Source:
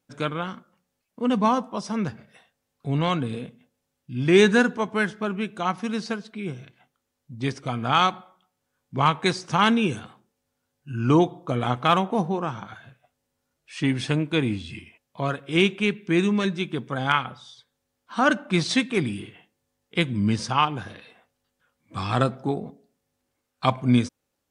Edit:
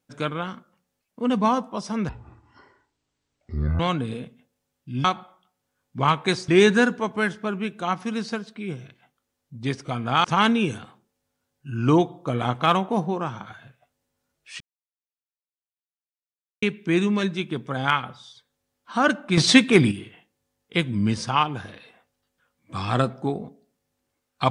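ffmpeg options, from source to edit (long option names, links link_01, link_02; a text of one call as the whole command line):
ffmpeg -i in.wav -filter_complex "[0:a]asplit=10[link_01][link_02][link_03][link_04][link_05][link_06][link_07][link_08][link_09][link_10];[link_01]atrim=end=2.094[link_11];[link_02]atrim=start=2.09:end=3.01,asetpts=PTS-STARTPTS,asetrate=23814,aresample=44100,atrim=end_sample=75133,asetpts=PTS-STARTPTS[link_12];[link_03]atrim=start=3.006:end=4.262[link_13];[link_04]atrim=start=8.018:end=9.462[link_14];[link_05]atrim=start=4.258:end=8.022[link_15];[link_06]atrim=start=9.458:end=13.82,asetpts=PTS-STARTPTS,afade=type=out:start_time=4.358:duration=0.004:curve=hsin[link_16];[link_07]atrim=start=13.82:end=15.84,asetpts=PTS-STARTPTS,volume=0[link_17];[link_08]atrim=start=15.84:end=18.592,asetpts=PTS-STARTPTS,afade=type=in:duration=0.004:curve=hsin[link_18];[link_09]atrim=start=18.588:end=19.132,asetpts=PTS-STARTPTS,volume=8dB[link_19];[link_10]atrim=start=19.128[link_20];[link_11][link_12]acrossfade=duration=0.004:curve1=hsin:curve2=hsin[link_21];[link_21][link_13]acrossfade=duration=0.004:curve1=hsin:curve2=hsin[link_22];[link_22][link_14]acrossfade=duration=0.004:curve1=hsin:curve2=hsin[link_23];[link_23][link_15]acrossfade=duration=0.004:curve1=hsin:curve2=hsin[link_24];[link_16][link_17][link_18]concat=n=3:v=0:a=1[link_25];[link_24][link_25]acrossfade=duration=0.004:curve1=hsin:curve2=hsin[link_26];[link_26][link_19]acrossfade=duration=0.004:curve1=hsin:curve2=hsin[link_27];[link_27][link_20]acrossfade=duration=0.004:curve1=hsin:curve2=hsin" out.wav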